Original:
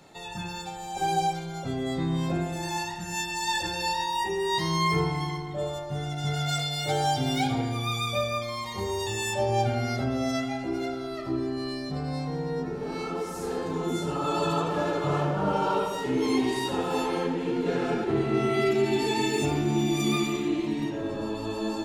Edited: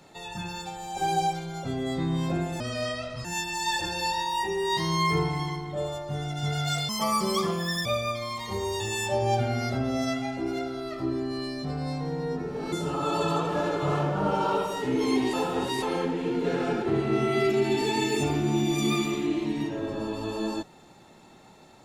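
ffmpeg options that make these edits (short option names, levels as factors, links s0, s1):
-filter_complex "[0:a]asplit=8[s0][s1][s2][s3][s4][s5][s6][s7];[s0]atrim=end=2.604[s8];[s1]atrim=start=2.6:end=3.06,asetpts=PTS-STARTPTS,asetrate=31311,aresample=44100[s9];[s2]atrim=start=3.056:end=6.704[s10];[s3]atrim=start=6.7:end=8.12,asetpts=PTS-STARTPTS,asetrate=64827,aresample=44100[s11];[s4]atrim=start=8.116:end=12.992[s12];[s5]atrim=start=13.938:end=16.552[s13];[s6]atrim=start=16.548:end=17.042,asetpts=PTS-STARTPTS,areverse[s14];[s7]atrim=start=17.038[s15];[s8][s9]acrossfade=d=0.004:c1=hsin:c2=hsin[s16];[s16][s10]acrossfade=d=0.004:c1=hsin:c2=hsin[s17];[s17][s11]acrossfade=d=0.004:c1=hsin:c2=hsin[s18];[s18][s12]acrossfade=d=0.004:c1=hsin:c2=hsin[s19];[s19][s13]acrossfade=d=0.004:c1=hsin:c2=hsin[s20];[s20][s14]acrossfade=d=0.004:c1=hsin:c2=hsin[s21];[s21][s15]acrossfade=d=0.004:c1=hsin:c2=hsin"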